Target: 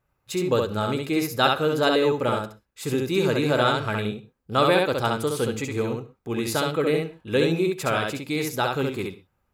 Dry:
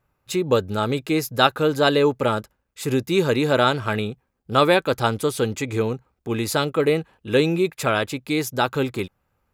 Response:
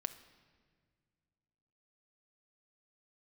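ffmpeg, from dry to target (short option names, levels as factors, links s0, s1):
-filter_complex "[0:a]asplit=2[s0][s1];[1:a]atrim=start_sample=2205,afade=t=out:st=0.18:d=0.01,atrim=end_sample=8379,adelay=67[s2];[s1][s2]afir=irnorm=-1:irlink=0,volume=0.841[s3];[s0][s3]amix=inputs=2:normalize=0,volume=0.631"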